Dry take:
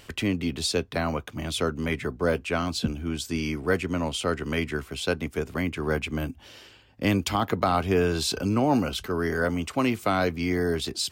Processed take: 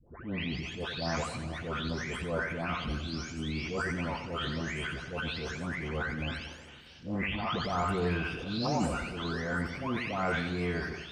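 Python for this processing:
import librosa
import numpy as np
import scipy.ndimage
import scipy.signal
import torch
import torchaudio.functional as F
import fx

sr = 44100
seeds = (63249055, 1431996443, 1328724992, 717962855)

y = fx.spec_delay(x, sr, highs='late', ms=624)
y = fx.dynamic_eq(y, sr, hz=350.0, q=0.83, threshold_db=-40.0, ratio=4.0, max_db=-6)
y = fx.transient(y, sr, attack_db=-11, sustain_db=7)
y = fx.air_absorb(y, sr, metres=120.0)
y = fx.echo_feedback(y, sr, ms=90, feedback_pct=44, wet_db=-9)
y = fx.echo_warbled(y, sr, ms=227, feedback_pct=62, rate_hz=2.8, cents=168, wet_db=-19)
y = y * librosa.db_to_amplitude(-2.0)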